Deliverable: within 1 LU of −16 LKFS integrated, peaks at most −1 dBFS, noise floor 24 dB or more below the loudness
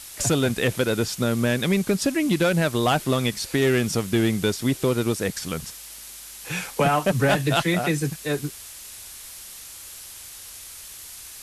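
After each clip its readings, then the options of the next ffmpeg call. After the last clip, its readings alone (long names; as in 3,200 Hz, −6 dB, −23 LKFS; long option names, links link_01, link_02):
background noise floor −41 dBFS; target noise floor −47 dBFS; integrated loudness −23.0 LKFS; sample peak −9.5 dBFS; target loudness −16.0 LKFS
→ -af "afftdn=noise_reduction=6:noise_floor=-41"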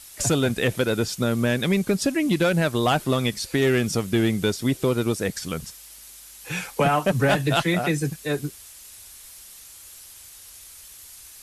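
background noise floor −45 dBFS; target noise floor −47 dBFS
→ -af "afftdn=noise_reduction=6:noise_floor=-45"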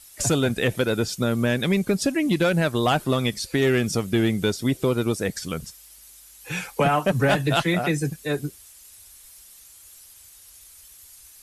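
background noise floor −49 dBFS; integrated loudness −23.0 LKFS; sample peak −9.5 dBFS; target loudness −16.0 LKFS
→ -af "volume=7dB"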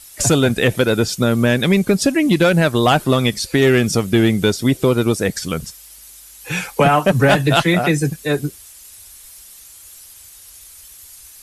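integrated loudness −16.0 LKFS; sample peak −2.5 dBFS; background noise floor −42 dBFS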